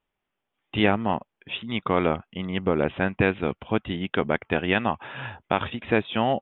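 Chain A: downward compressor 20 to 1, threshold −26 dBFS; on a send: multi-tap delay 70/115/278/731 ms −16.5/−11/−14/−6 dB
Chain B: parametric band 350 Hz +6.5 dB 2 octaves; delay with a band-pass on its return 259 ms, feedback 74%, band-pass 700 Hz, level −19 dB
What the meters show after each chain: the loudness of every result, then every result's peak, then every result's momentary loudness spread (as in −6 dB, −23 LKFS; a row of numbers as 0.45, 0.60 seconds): −32.0, −22.0 LKFS; −12.5, −2.5 dBFS; 4, 10 LU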